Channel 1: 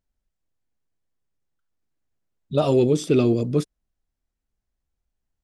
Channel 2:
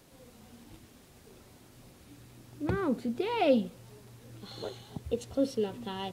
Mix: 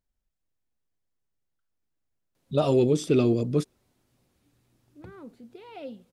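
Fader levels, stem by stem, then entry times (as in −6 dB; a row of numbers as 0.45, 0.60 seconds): −3.0, −15.0 decibels; 0.00, 2.35 seconds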